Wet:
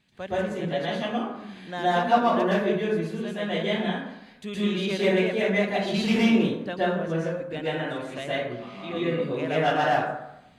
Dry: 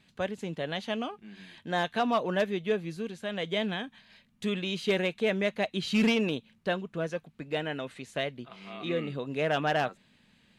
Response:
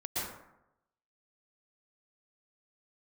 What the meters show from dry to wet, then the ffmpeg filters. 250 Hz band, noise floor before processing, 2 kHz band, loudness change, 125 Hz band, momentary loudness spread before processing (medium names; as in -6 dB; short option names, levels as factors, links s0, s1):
+6.0 dB, -65 dBFS, +4.0 dB, +5.0 dB, +6.0 dB, 10 LU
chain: -filter_complex "[1:a]atrim=start_sample=2205[s0];[0:a][s0]afir=irnorm=-1:irlink=0"